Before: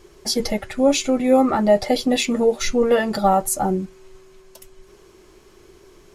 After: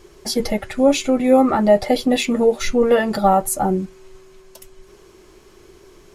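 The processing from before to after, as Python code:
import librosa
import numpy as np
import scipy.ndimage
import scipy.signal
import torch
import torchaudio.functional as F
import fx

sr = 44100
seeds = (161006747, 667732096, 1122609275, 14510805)

y = fx.dynamic_eq(x, sr, hz=5700.0, q=1.0, threshold_db=-38.0, ratio=4.0, max_db=-5)
y = y * librosa.db_to_amplitude(2.0)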